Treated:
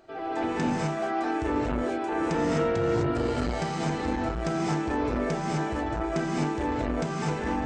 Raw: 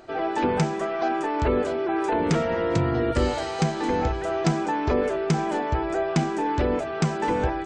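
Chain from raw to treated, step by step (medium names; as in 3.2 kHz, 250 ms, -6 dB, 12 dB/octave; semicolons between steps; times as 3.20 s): gated-style reverb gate 280 ms rising, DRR -6 dB; transformer saturation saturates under 330 Hz; trim -9 dB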